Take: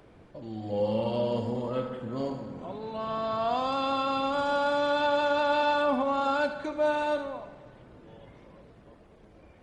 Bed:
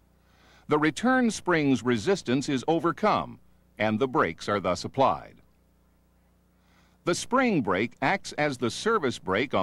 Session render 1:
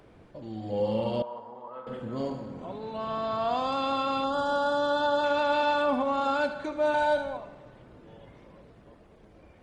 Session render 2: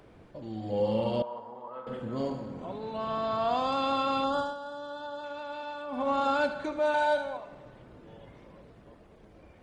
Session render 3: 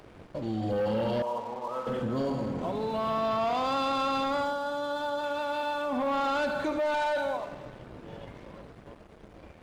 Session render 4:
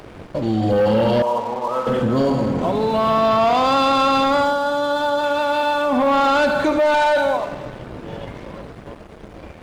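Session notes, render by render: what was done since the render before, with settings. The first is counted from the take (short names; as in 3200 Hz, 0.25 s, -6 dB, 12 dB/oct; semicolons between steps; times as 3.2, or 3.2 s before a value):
1.22–1.87 band-pass 1000 Hz, Q 2.9; 4.24–5.24 Butterworth band-stop 2300 Hz, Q 1.8; 6.94–7.37 comb 1.3 ms, depth 96%
4.36–6.09 dip -13.5 dB, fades 0.19 s; 6.79–7.51 low shelf 240 Hz -10.5 dB
sample leveller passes 2; limiter -23.5 dBFS, peak gain reduction 7 dB
gain +12 dB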